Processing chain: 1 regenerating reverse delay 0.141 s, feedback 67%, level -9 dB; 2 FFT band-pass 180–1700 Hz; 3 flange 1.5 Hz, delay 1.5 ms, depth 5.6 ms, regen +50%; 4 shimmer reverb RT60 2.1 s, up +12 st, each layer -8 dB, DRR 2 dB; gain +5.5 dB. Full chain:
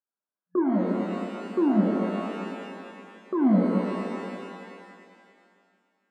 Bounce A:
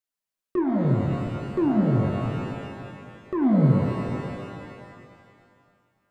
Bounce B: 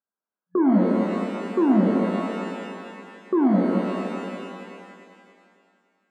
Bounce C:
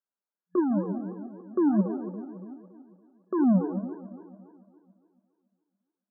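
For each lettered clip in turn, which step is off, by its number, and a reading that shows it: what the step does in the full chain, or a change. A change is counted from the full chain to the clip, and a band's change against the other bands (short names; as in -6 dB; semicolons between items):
2, 125 Hz band +10.5 dB; 3, loudness change +3.5 LU; 4, 1 kHz band -3.5 dB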